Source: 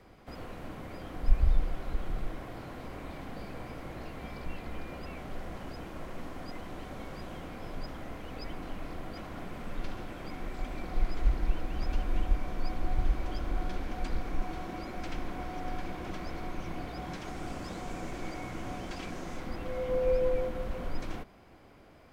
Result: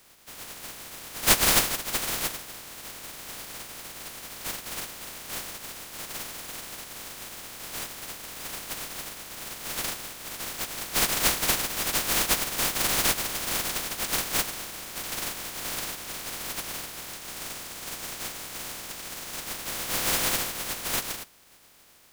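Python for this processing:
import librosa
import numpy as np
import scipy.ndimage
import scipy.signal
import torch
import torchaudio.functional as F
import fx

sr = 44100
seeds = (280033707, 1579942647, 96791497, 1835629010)

y = fx.spec_flatten(x, sr, power=0.13)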